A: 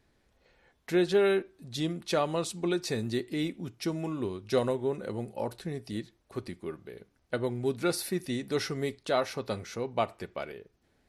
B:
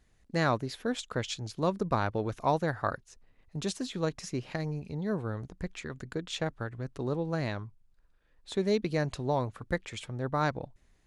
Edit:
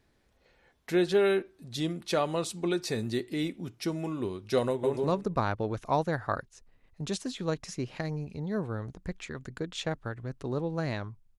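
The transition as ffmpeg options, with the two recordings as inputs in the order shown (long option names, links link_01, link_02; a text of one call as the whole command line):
ffmpeg -i cue0.wav -i cue1.wav -filter_complex "[0:a]apad=whole_dur=11.38,atrim=end=11.38,atrim=end=4.972[link_01];[1:a]atrim=start=1.518:end=7.93[link_02];[link_01][link_02]acrossfade=duration=0.004:curve1=hsin:curve2=hsin,asplit=2[link_03][link_04];[link_04]afade=type=in:start_time=4.69:duration=0.01,afade=type=out:start_time=4.97:duration=0.01,aecho=0:1:140|280|420:0.841395|0.168279|0.0336558[link_05];[link_03][link_05]amix=inputs=2:normalize=0" out.wav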